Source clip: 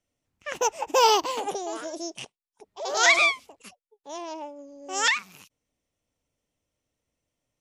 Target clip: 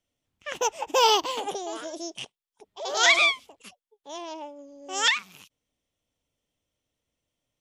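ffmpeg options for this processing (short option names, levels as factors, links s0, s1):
-af "equalizer=f=3300:t=o:w=0.41:g=7,volume=0.841"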